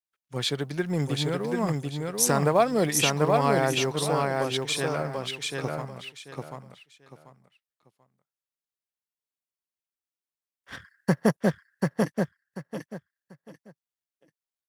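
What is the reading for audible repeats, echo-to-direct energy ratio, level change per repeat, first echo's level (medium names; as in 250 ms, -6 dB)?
3, -2.5 dB, -12.5 dB, -3.0 dB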